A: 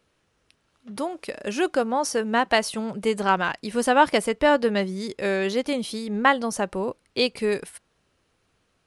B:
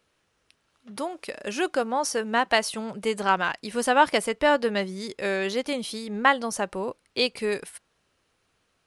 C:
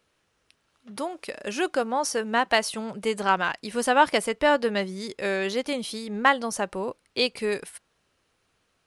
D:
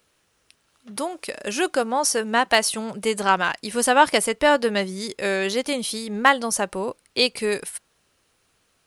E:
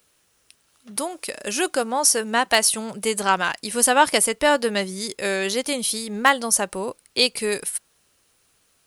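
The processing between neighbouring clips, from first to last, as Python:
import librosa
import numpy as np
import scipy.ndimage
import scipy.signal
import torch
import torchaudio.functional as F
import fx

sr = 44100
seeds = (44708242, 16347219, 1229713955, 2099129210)

y1 = fx.low_shelf(x, sr, hz=480.0, db=-5.5)
y2 = np.clip(y1, -10.0 ** (-7.0 / 20.0), 10.0 ** (-7.0 / 20.0))
y3 = fx.high_shelf(y2, sr, hz=6700.0, db=10.0)
y3 = y3 * librosa.db_to_amplitude(3.0)
y4 = fx.high_shelf(y3, sr, hz=6200.0, db=10.0)
y4 = y4 * librosa.db_to_amplitude(-1.0)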